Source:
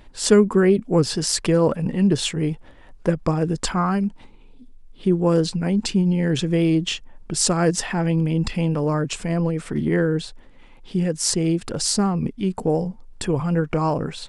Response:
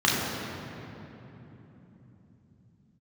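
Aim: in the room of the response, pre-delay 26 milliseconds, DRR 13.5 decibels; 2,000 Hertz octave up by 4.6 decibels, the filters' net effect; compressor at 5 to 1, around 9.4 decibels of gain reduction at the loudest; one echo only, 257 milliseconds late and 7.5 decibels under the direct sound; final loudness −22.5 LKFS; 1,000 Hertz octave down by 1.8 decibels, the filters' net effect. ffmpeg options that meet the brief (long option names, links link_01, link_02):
-filter_complex "[0:a]equalizer=frequency=1000:width_type=o:gain=-4.5,equalizer=frequency=2000:width_type=o:gain=7.5,acompressor=threshold=-20dB:ratio=5,aecho=1:1:257:0.422,asplit=2[link_01][link_02];[1:a]atrim=start_sample=2205,adelay=26[link_03];[link_02][link_03]afir=irnorm=-1:irlink=0,volume=-31dB[link_04];[link_01][link_04]amix=inputs=2:normalize=0,volume=1.5dB"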